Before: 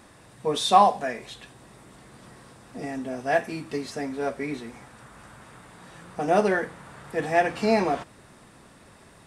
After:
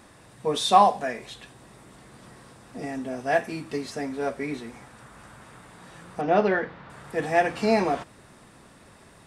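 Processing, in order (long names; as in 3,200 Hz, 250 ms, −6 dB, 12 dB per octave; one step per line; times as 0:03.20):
0:06.21–0:06.90: low-pass filter 4,400 Hz 24 dB per octave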